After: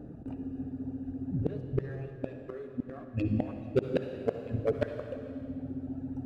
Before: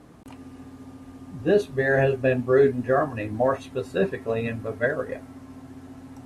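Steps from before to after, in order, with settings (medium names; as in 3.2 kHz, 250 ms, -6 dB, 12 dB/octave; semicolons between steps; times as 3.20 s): local Wiener filter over 41 samples; reverb removal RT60 1.3 s; inverted gate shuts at -21 dBFS, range -31 dB; on a send: reverberation RT60 2.4 s, pre-delay 47 ms, DRR 6 dB; on the sum: trim +6.5 dB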